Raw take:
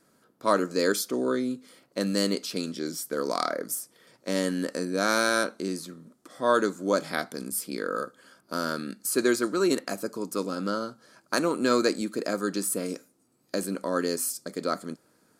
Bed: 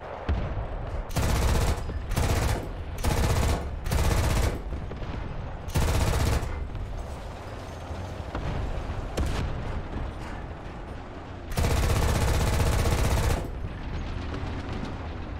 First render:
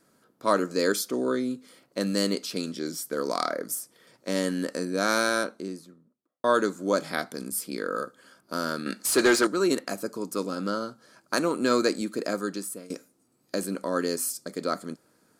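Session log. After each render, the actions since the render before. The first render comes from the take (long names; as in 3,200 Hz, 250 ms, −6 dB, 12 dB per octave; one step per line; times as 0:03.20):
0:05.14–0:06.44: fade out and dull
0:08.86–0:09.47: mid-hump overdrive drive 19 dB, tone 4,500 Hz, clips at −11 dBFS
0:12.33–0:12.90: fade out, to −18 dB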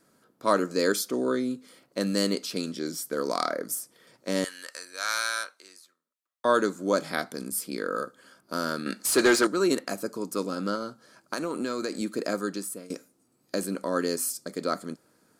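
0:04.44–0:06.45: high-pass filter 1,400 Hz
0:10.75–0:11.98: downward compressor, threshold −26 dBFS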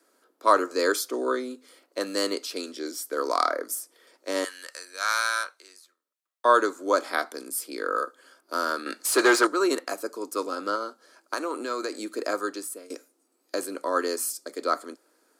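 Butterworth high-pass 290 Hz 36 dB per octave
dynamic equaliser 1,100 Hz, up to +7 dB, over −41 dBFS, Q 1.4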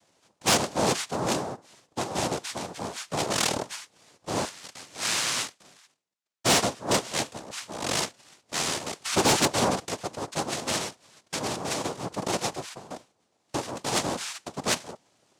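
cochlear-implant simulation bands 2
soft clipping −14.5 dBFS, distortion −14 dB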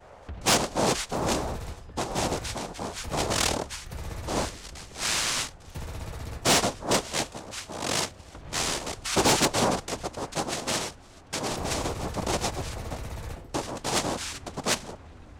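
mix in bed −12.5 dB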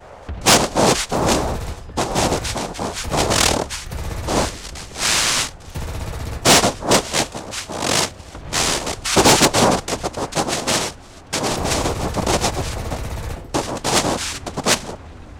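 level +9.5 dB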